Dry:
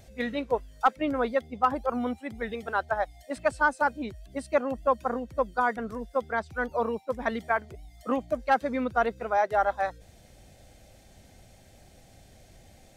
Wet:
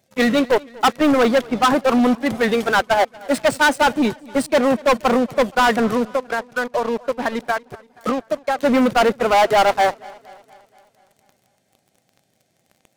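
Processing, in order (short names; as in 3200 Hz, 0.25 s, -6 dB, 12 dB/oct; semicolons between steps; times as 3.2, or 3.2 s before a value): HPF 130 Hz 24 dB/oct; 6.03–8.59 compressor 12:1, threshold -35 dBFS, peak gain reduction 18.5 dB; sample leveller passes 5; warbling echo 0.237 s, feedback 55%, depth 67 cents, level -23 dB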